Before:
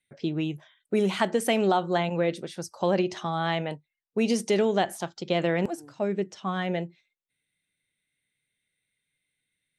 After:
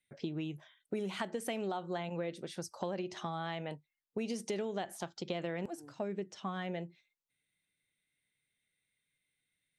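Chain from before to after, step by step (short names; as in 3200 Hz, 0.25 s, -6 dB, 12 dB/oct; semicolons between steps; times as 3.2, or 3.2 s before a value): compressor 4:1, threshold -32 dBFS, peak gain reduction 11.5 dB; gain -3.5 dB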